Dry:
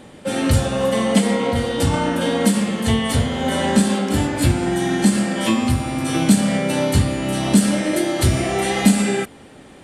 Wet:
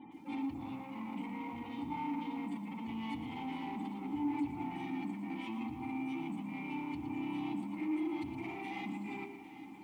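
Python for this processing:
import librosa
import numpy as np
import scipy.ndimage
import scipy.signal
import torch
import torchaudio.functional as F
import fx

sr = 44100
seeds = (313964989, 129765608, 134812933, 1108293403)

p1 = fx.hum_notches(x, sr, base_hz=50, count=10)
p2 = fx.spec_gate(p1, sr, threshold_db=-20, keep='strong')
p3 = fx.over_compress(p2, sr, threshold_db=-25.0, ratio=-1.0)
p4 = p2 + (p3 * 10.0 ** (0.5 / 20.0))
p5 = fx.high_shelf(p4, sr, hz=12000.0, db=-9.5)
p6 = 10.0 ** (-19.5 / 20.0) * np.tanh(p5 / 10.0 ** (-19.5 / 20.0))
p7 = fx.vowel_filter(p6, sr, vowel='u')
p8 = fx.peak_eq(p7, sr, hz=410.0, db=-7.5, octaves=1.3)
p9 = p8 + fx.echo_thinned(p8, sr, ms=797, feedback_pct=51, hz=260.0, wet_db=-14.0, dry=0)
p10 = fx.echo_crushed(p9, sr, ms=116, feedback_pct=35, bits=10, wet_db=-10)
y = p10 * 10.0 ** (-3.0 / 20.0)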